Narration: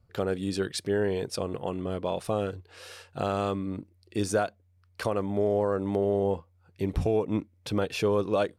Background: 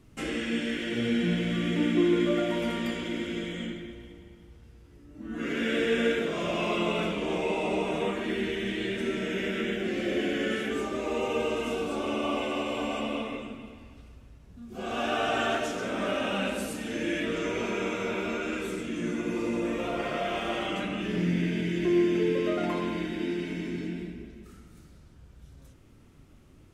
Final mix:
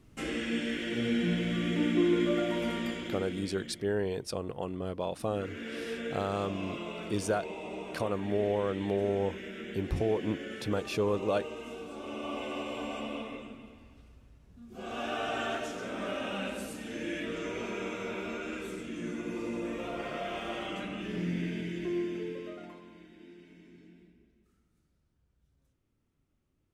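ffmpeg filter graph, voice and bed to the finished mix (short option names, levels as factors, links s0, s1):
-filter_complex "[0:a]adelay=2950,volume=0.631[s0];[1:a]volume=1.41,afade=t=out:st=2.77:d=0.8:silence=0.354813,afade=t=in:st=11.94:d=0.59:silence=0.530884,afade=t=out:st=21.49:d=1.33:silence=0.16788[s1];[s0][s1]amix=inputs=2:normalize=0"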